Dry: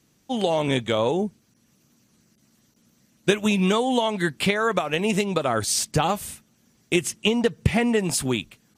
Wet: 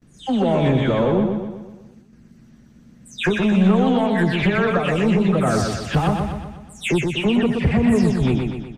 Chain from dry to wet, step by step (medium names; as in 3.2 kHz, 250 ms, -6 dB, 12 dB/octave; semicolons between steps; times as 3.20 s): delay that grows with frequency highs early, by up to 225 ms; RIAA curve playback; gate with hold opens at -48 dBFS; peaking EQ 1.7 kHz +4.5 dB 0.67 oct; in parallel at +3 dB: compression, threshold -25 dBFS, peak gain reduction 19 dB; on the sum: saturation -9.5 dBFS, distortion -13 dB; on a send: feedback delay 123 ms, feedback 51%, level -4.5 dB; on the sum: trim -2.5 dB